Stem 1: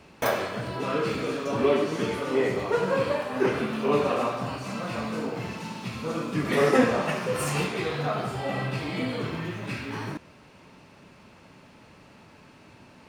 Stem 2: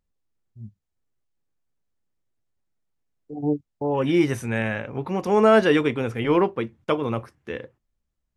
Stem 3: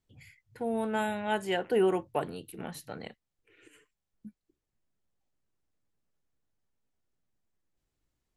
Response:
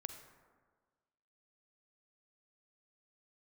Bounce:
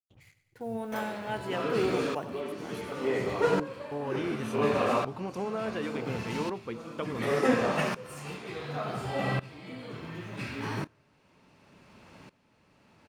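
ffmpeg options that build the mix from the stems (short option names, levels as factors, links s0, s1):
-filter_complex "[0:a]aeval=exprs='val(0)*pow(10,-19*if(lt(mod(-0.69*n/s,1),2*abs(-0.69)/1000),1-mod(-0.69*n/s,1)/(2*abs(-0.69)/1000),(mod(-0.69*n/s,1)-2*abs(-0.69)/1000)/(1-2*abs(-0.69)/1000))/20)':c=same,adelay=700,volume=1.12,asplit=2[s0][s1];[s1]volume=0.0891[s2];[1:a]acompressor=threshold=0.0794:ratio=6,adelay=100,volume=0.355[s3];[2:a]highshelf=f=4800:g=-5,acrusher=bits=8:mix=0:aa=0.5,volume=0.596,asplit=2[s4][s5];[s5]volume=0.211[s6];[3:a]atrim=start_sample=2205[s7];[s2][s7]afir=irnorm=-1:irlink=0[s8];[s6]aecho=0:1:97|194|291|388|485|582|679|776:1|0.55|0.303|0.166|0.0915|0.0503|0.0277|0.0152[s9];[s0][s3][s4][s8][s9]amix=inputs=5:normalize=0"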